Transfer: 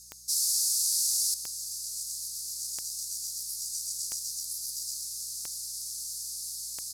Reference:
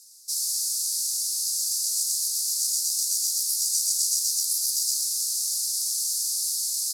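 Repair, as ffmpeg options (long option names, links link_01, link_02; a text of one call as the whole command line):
ffmpeg -i in.wav -af "adeclick=threshold=4,bandreject=frequency=61:width_type=h:width=4,bandreject=frequency=122:width_type=h:width=4,bandreject=frequency=183:width_type=h:width=4,bandreject=frequency=6500:width=30,asetnsamples=nb_out_samples=441:pad=0,asendcmd='1.34 volume volume 10.5dB',volume=0dB" out.wav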